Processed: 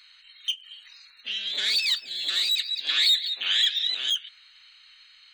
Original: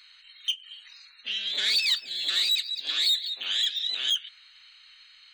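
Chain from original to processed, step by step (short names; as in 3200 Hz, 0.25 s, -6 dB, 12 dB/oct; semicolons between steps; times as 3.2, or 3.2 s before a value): 0.55–1.36 crackle 25/s -53 dBFS; 2.59–3.94 dynamic EQ 2000 Hz, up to +8 dB, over -42 dBFS, Q 0.86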